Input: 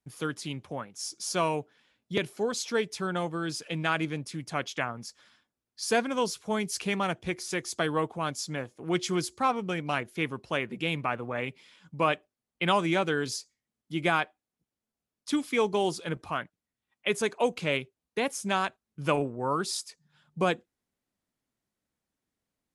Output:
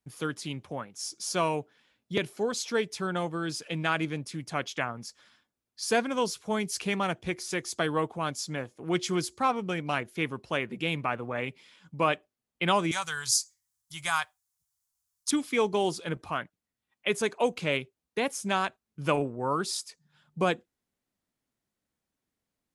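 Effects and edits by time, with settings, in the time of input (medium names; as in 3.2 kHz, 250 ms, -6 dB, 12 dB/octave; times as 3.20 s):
12.91–15.31 s: FFT filter 100 Hz 0 dB, 180 Hz -14 dB, 290 Hz -29 dB, 550 Hz -16 dB, 1 kHz +1 dB, 2.6 kHz -4 dB, 6.6 kHz +13 dB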